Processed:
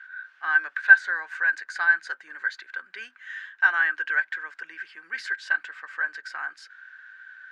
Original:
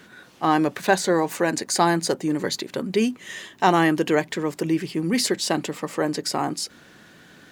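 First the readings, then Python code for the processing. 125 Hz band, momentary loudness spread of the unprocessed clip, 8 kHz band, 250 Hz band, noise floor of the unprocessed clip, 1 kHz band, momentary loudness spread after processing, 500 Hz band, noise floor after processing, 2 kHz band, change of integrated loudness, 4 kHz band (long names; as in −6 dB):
below −40 dB, 8 LU, below −20 dB, below −35 dB, −51 dBFS, −12.0 dB, 20 LU, −28.0 dB, −59 dBFS, +10.0 dB, −0.5 dB, −15.0 dB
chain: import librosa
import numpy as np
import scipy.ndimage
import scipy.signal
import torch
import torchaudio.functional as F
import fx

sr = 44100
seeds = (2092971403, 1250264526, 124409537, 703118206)

y = fx.ladder_bandpass(x, sr, hz=1600.0, resonance_pct=90)
y = F.gain(torch.from_numpy(y), 4.0).numpy()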